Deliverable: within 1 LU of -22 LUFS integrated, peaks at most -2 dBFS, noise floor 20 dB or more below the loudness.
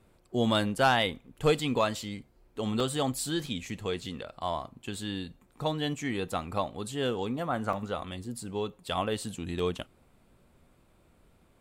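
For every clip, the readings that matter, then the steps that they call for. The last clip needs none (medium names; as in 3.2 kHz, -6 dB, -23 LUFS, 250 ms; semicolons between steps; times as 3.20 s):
dropouts 4; longest dropout 2.7 ms; loudness -31.5 LUFS; peak level -14.5 dBFS; loudness target -22.0 LUFS
-> interpolate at 2.80/3.46/7.73/9.59 s, 2.7 ms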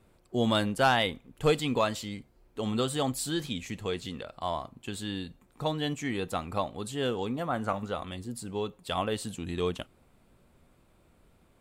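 dropouts 0; loudness -31.5 LUFS; peak level -14.5 dBFS; loudness target -22.0 LUFS
-> trim +9.5 dB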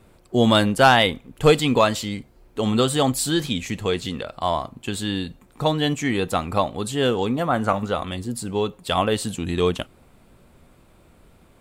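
loudness -22.0 LUFS; peak level -5.0 dBFS; noise floor -54 dBFS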